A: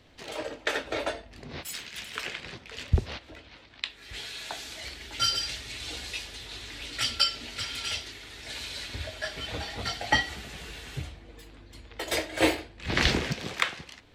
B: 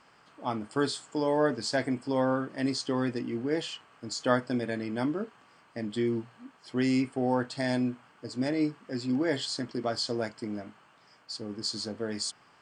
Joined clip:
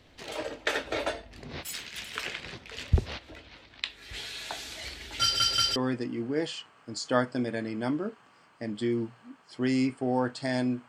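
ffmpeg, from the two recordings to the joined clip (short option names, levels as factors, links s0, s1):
-filter_complex "[0:a]apad=whole_dur=10.88,atrim=end=10.88,asplit=3[s0][s1][s2];[s0]atrim=end=5.402[s3];[s1]atrim=start=5.218:end=5.402[s4];[s2]atrim=start=5.218:end=5.402[s5];[1:a]atrim=start=2.908:end=8.03[s6];[s3][s4]acrossfade=d=0.004:c1=hsin:c2=hsin[s7];[s7][s5]acrossfade=d=0.004:c1=hsin:c2=hsin[s8];[s8][s6]acrossfade=d=0.004:c1=hsin:c2=hsin"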